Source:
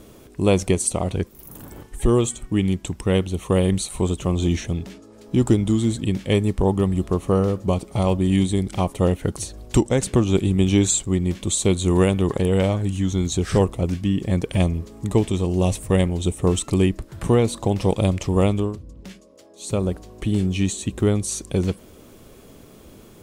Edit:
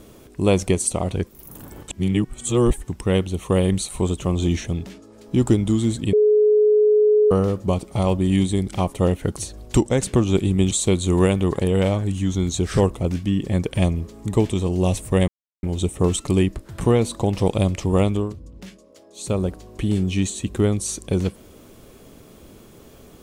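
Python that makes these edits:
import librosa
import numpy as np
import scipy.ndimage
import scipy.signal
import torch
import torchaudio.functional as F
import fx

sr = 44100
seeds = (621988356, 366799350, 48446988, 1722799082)

y = fx.edit(x, sr, fx.reverse_span(start_s=1.88, length_s=1.0),
    fx.bleep(start_s=6.13, length_s=1.18, hz=423.0, db=-12.0),
    fx.cut(start_s=10.71, length_s=0.78),
    fx.insert_silence(at_s=16.06, length_s=0.35), tone=tone)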